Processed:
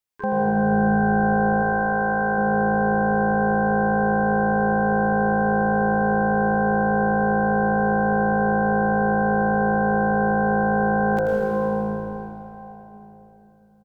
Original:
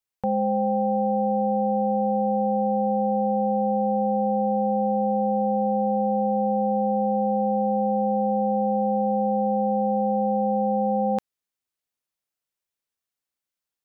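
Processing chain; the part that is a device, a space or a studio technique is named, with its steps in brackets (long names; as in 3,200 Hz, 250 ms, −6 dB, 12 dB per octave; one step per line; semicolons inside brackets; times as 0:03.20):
shimmer-style reverb (pitch-shifted copies added +12 semitones −10 dB; convolution reverb RT60 3.9 s, pre-delay 97 ms, DRR −1.5 dB)
0:01.62–0:02.38: tilt shelving filter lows −5 dB
echo with shifted repeats 82 ms, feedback 54%, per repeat −55 Hz, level −9 dB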